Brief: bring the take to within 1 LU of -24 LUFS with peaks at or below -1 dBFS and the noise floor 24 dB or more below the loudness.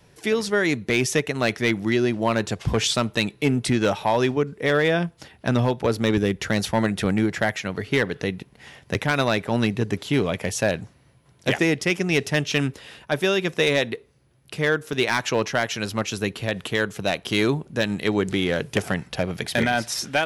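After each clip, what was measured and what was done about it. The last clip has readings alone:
clipped samples 0.4%; clipping level -11.5 dBFS; dropouts 1; longest dropout 1.5 ms; loudness -23.5 LUFS; peak level -11.5 dBFS; loudness target -24.0 LUFS
-> clip repair -11.5 dBFS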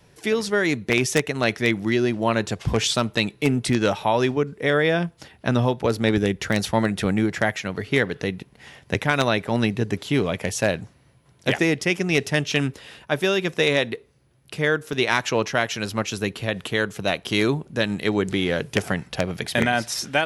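clipped samples 0.0%; dropouts 1; longest dropout 1.5 ms
-> interpolate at 14.93 s, 1.5 ms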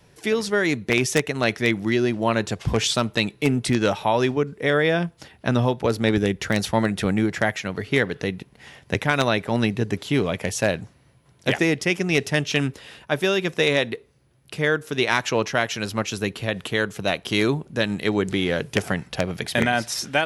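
dropouts 0; loudness -23.0 LUFS; peak level -2.5 dBFS; loudness target -24.0 LUFS
-> trim -1 dB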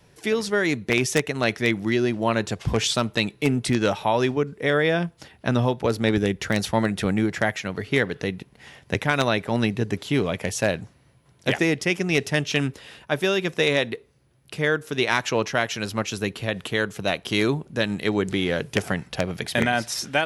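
loudness -24.0 LUFS; peak level -3.5 dBFS; noise floor -58 dBFS

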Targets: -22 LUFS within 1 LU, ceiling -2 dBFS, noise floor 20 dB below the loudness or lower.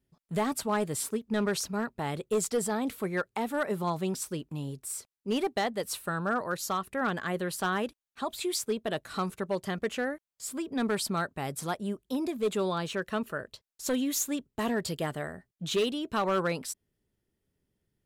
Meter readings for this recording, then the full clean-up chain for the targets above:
clipped samples 1.0%; clipping level -22.0 dBFS; loudness -32.0 LUFS; peak level -22.0 dBFS; loudness target -22.0 LUFS
-> clip repair -22 dBFS; trim +10 dB

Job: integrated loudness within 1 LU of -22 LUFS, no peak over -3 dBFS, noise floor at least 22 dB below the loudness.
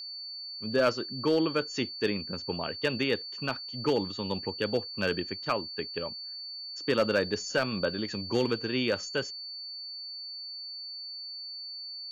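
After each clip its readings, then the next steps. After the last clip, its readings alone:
clipped samples 0.2%; clipping level -18.0 dBFS; steady tone 4.5 kHz; tone level -38 dBFS; loudness -31.5 LUFS; peak level -18.0 dBFS; loudness target -22.0 LUFS
-> clip repair -18 dBFS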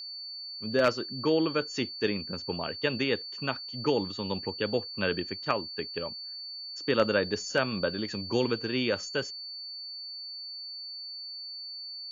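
clipped samples 0.0%; steady tone 4.5 kHz; tone level -38 dBFS
-> band-stop 4.5 kHz, Q 30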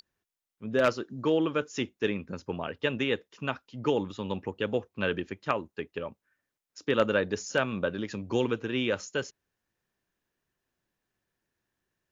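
steady tone not found; loudness -30.5 LUFS; peak level -9.0 dBFS; loudness target -22.0 LUFS
-> trim +8.5 dB; peak limiter -3 dBFS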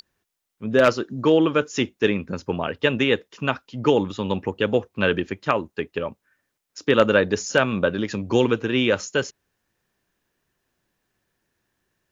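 loudness -22.5 LUFS; peak level -3.0 dBFS; noise floor -79 dBFS

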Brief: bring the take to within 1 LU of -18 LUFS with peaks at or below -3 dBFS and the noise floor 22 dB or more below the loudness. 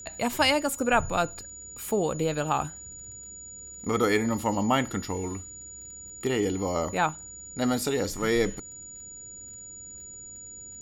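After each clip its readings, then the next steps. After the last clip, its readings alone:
tick rate 20 per s; steady tone 6.9 kHz; tone level -41 dBFS; loudness -27.5 LUFS; peak level -9.5 dBFS; loudness target -18.0 LUFS
-> de-click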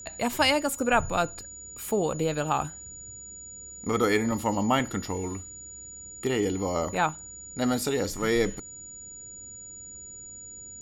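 tick rate 0 per s; steady tone 6.9 kHz; tone level -41 dBFS
-> band-stop 6.9 kHz, Q 30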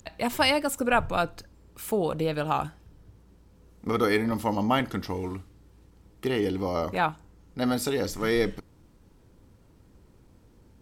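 steady tone not found; loudness -27.5 LUFS; peak level -10.0 dBFS; loudness target -18.0 LUFS
-> trim +9.5 dB; peak limiter -3 dBFS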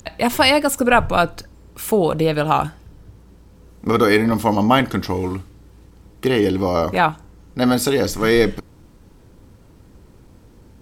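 loudness -18.0 LUFS; peak level -3.0 dBFS; noise floor -48 dBFS

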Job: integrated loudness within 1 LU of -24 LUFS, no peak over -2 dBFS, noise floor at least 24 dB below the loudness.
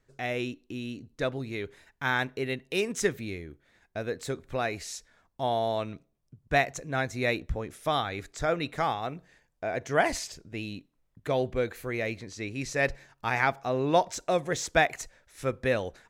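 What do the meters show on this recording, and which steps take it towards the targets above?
loudness -30.5 LUFS; peak level -9.0 dBFS; loudness target -24.0 LUFS
-> trim +6.5 dB

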